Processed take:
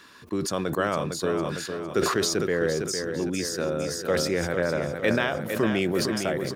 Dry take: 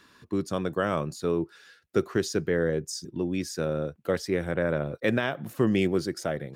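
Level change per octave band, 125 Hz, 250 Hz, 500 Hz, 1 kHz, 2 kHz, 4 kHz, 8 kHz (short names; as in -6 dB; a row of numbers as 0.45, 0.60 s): 0.0, +0.5, +2.0, +4.5, +4.0, +7.5, +8.5 dB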